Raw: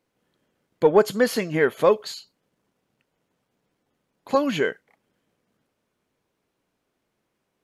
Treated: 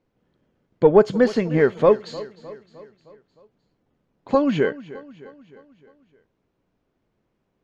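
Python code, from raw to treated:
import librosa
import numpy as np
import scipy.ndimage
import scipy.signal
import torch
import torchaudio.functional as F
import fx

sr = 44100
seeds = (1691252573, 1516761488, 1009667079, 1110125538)

y = scipy.signal.sosfilt(scipy.signal.butter(4, 7000.0, 'lowpass', fs=sr, output='sos'), x)
y = fx.tilt_eq(y, sr, slope=-2.5)
y = fx.echo_feedback(y, sr, ms=307, feedback_pct=54, wet_db=-18)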